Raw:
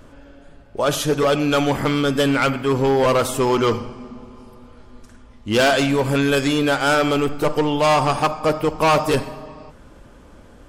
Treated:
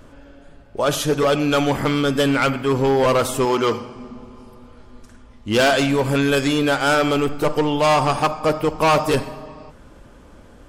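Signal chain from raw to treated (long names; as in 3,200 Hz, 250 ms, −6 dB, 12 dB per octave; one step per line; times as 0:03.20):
0:03.45–0:03.95: high-pass filter 210 Hz 6 dB per octave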